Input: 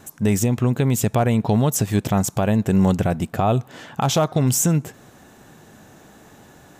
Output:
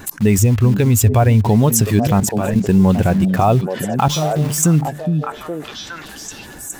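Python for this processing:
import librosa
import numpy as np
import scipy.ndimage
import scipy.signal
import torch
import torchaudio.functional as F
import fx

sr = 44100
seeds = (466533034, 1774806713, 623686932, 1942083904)

p1 = fx.bin_expand(x, sr, power=1.5)
p2 = fx.comb_fb(p1, sr, f0_hz=150.0, decay_s=0.33, harmonics='all', damping=0.0, mix_pct=100, at=(4.08, 4.63))
p3 = fx.quant_dither(p2, sr, seeds[0], bits=6, dither='none')
p4 = p2 + (p3 * 10.0 ** (-5.0 / 20.0))
p5 = fx.low_shelf_res(p4, sr, hz=120.0, db=7.5, q=3.0, at=(0.38, 1.48))
p6 = fx.level_steps(p5, sr, step_db=15, at=(2.2, 2.69))
p7 = p6 + fx.echo_stepped(p6, sr, ms=414, hz=210.0, octaves=1.4, feedback_pct=70, wet_db=-8.0, dry=0)
y = fx.env_flatten(p7, sr, amount_pct=50)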